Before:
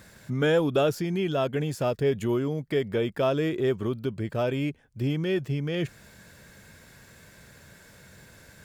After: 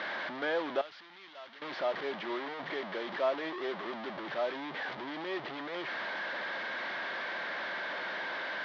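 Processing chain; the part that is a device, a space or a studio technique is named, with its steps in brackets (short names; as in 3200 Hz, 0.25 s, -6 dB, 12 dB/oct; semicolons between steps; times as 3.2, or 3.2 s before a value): digital answering machine (BPF 340–3300 Hz; delta modulation 32 kbps, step -25.5 dBFS; speaker cabinet 410–3300 Hz, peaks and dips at 450 Hz -10 dB, 1400 Hz -3 dB, 2600 Hz -9 dB); 0.81–1.62 passive tone stack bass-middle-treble 5-5-5; gain -2 dB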